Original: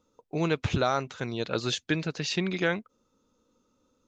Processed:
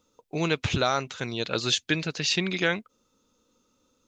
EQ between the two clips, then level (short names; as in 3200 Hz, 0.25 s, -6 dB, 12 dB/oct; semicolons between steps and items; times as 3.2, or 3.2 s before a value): bell 2800 Hz +3.5 dB 1.4 oct; high shelf 3600 Hz +7.5 dB; 0.0 dB